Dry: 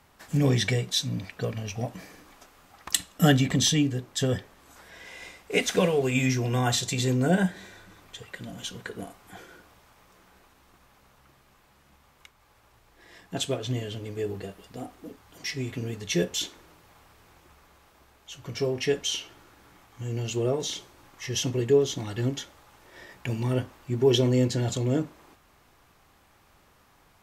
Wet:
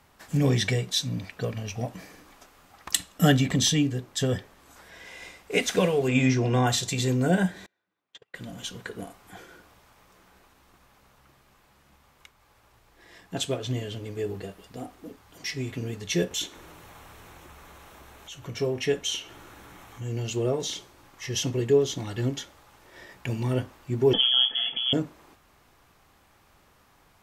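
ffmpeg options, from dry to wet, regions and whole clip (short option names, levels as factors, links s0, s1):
-filter_complex "[0:a]asettb=1/sr,asplit=3[s0][s1][s2];[s0]atrim=end=6.084[s3];[s1]atrim=start=6.08:end=6.67,asetpts=PTS-STARTPTS,afade=t=in:d=0.004:c=qsin,afade=t=out:st=0.586:d=0.004:c=qsin,lowpass=6100,equalizer=f=440:w=0.38:g=4.5[s4];[s2]atrim=start=6.666[s5];[s3][s4]acrossfade=d=0.004:c1=hsin:c2=qsin[s6];[s6][s5]acrossfade=d=0.004:c1=qsin:c2=hsin,asettb=1/sr,asplit=3[s7][s8][s9];[s7]atrim=end=7.664[s10];[s8]atrim=start=7.66:end=8.35,asetpts=PTS-STARTPTS,afade=t=in:d=0.004:c=qsin,afade=t=out:st=0.686:d=0.004:c=qsin,highpass=200,lowpass=4400,agate=range=0.0316:threshold=0.00708:ratio=16:release=100:detection=peak[s11];[s9]atrim=start=8.346[s12];[s10][s11]acrossfade=d=0.004:c1=hsin:c2=qsin[s13];[s13][s12]acrossfade=d=0.004:c1=qsin:c2=hsin,asettb=1/sr,asplit=3[s14][s15][s16];[s14]atrim=end=16.314[s17];[s15]atrim=start=16.31:end=20.07,asetpts=PTS-STARTPTS,afade=t=in:d=0.004:c=qsin,afade=t=out:st=3.756:d=0.004:c=qsin,equalizer=f=4800:w=7.3:g=-8.5,acompressor=mode=upward:threshold=0.0126:ratio=2.5:attack=3.2:release=140:knee=2.83:detection=peak[s18];[s16]atrim=start=20.066[s19];[s17][s18]acrossfade=d=0.004:c1=hsin:c2=qsin[s20];[s20][s19]acrossfade=d=0.004:c1=qsin:c2=hsin,asettb=1/sr,asplit=3[s21][s22][s23];[s21]atrim=end=24.134[s24];[s22]atrim=start=24.13:end=24.93,asetpts=PTS-STARTPTS,afade=t=in:d=0.004:c=qsin,afade=t=out:st=0.796:d=0.004:c=qsin,aecho=1:1:4.6:0.38,atrim=end_sample=35280,lowpass=f=3000:t=q:w=0.5098,lowpass=f=3000:t=q:w=0.6013,lowpass=f=3000:t=q:w=0.9,lowpass=f=3000:t=q:w=2.563,afreqshift=-3500,bandreject=f=1100:w=17[s25];[s23]atrim=start=24.926[s26];[s24][s25]acrossfade=d=0.004:c1=hsin:c2=qsin[s27];[s27][s26]acrossfade=d=0.004:c1=qsin:c2=hsin"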